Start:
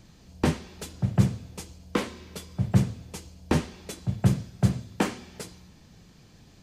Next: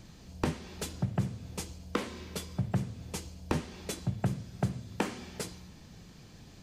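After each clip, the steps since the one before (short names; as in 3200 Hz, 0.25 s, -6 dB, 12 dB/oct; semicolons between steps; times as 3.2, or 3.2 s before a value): compressor 4:1, threshold -30 dBFS, peak gain reduction 14 dB; gain +1.5 dB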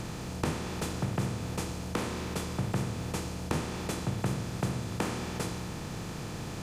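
per-bin compression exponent 0.4; gain -4 dB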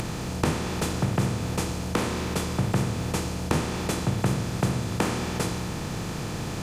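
upward compressor, threshold -37 dBFS; gain +6.5 dB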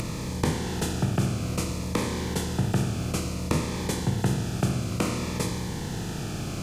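cascading phaser falling 0.58 Hz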